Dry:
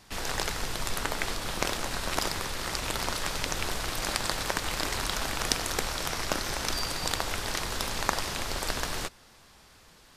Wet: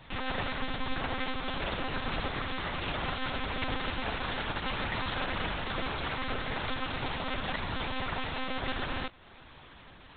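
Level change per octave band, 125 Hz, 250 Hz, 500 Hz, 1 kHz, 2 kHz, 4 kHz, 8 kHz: 0.0 dB, +1.5 dB, −2.0 dB, −1.5 dB, −1.0 dB, −5.0 dB, below −40 dB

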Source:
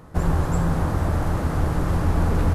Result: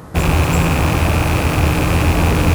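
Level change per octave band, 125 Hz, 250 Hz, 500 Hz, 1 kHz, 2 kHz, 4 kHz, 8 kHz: +7.0, +7.5, +8.5, +9.0, +14.5, +18.0, +14.5 decibels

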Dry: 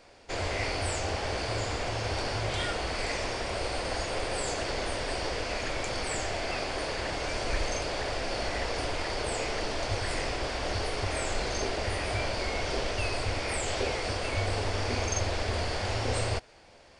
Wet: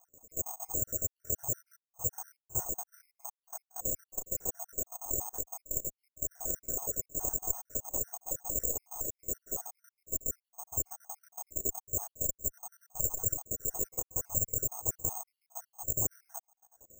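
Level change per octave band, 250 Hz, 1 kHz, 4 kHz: −12.0 dB, −16.0 dB, below −40 dB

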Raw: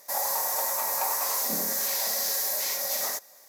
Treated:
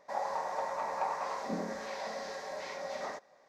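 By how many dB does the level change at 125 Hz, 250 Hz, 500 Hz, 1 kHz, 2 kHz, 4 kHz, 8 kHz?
can't be measured, +0.5 dB, −0.5 dB, −2.0 dB, −6.0 dB, −16.5 dB, −25.5 dB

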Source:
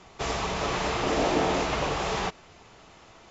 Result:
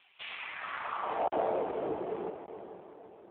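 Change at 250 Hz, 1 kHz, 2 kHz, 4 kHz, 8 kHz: −11.5 dB, −6.5 dB, −9.5 dB, −15.5 dB, can't be measured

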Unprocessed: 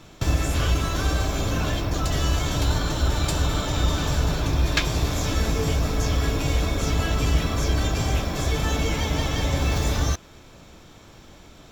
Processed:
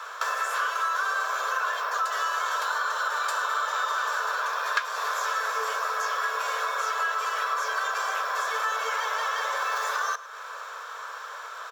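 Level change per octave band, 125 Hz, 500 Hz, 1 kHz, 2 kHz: below −40 dB, −7.0 dB, +6.5 dB, +5.5 dB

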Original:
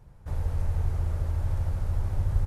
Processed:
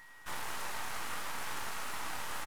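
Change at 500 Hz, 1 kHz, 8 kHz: −5.0 dB, +6.5 dB, can't be measured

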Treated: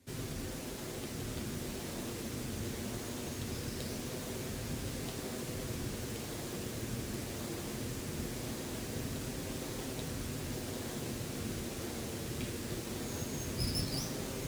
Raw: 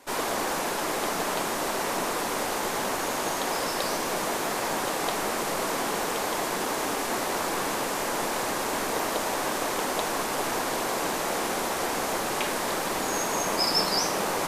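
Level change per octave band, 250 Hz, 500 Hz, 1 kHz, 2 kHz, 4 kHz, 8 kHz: −5.5, −13.5, −22.5, −17.0, −13.0, −12.0 decibels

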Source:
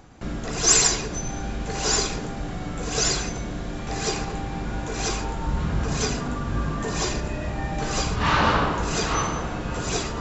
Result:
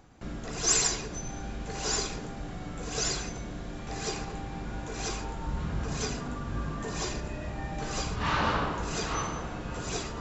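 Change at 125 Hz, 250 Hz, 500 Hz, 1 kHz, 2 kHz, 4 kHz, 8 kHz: −7.5 dB, −7.5 dB, −7.5 dB, −7.5 dB, −7.5 dB, −7.5 dB, can't be measured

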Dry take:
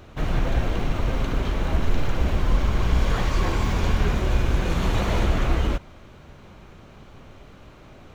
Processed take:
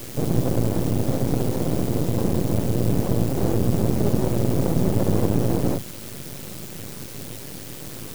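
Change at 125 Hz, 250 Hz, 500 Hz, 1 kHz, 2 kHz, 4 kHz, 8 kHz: +2.5 dB, +7.0 dB, +5.5 dB, −3.0 dB, −9.0 dB, −3.5 dB, can't be measured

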